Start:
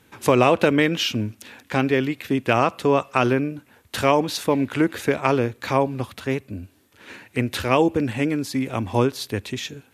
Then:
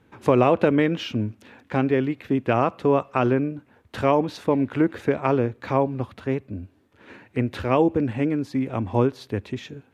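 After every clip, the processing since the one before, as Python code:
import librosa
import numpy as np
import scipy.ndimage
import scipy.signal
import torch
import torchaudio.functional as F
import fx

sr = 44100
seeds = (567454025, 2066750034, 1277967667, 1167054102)

y = fx.lowpass(x, sr, hz=1100.0, slope=6)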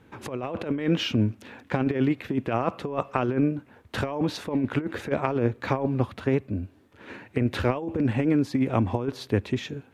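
y = fx.over_compress(x, sr, threshold_db=-23.0, ratio=-0.5)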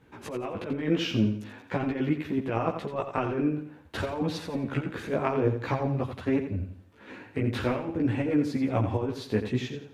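y = fx.chorus_voices(x, sr, voices=2, hz=0.47, base_ms=15, depth_ms=4.6, mix_pct=50)
y = fx.echo_feedback(y, sr, ms=86, feedback_pct=35, wet_db=-9.0)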